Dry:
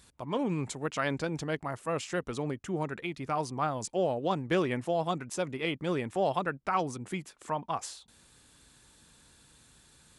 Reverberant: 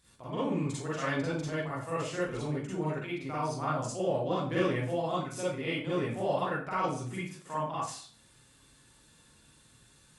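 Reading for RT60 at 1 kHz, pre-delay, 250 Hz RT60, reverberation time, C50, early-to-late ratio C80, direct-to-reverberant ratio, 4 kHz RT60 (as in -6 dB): 0.45 s, 39 ms, 0.55 s, 0.50 s, -2.0 dB, 6.0 dB, -9.0 dB, 0.40 s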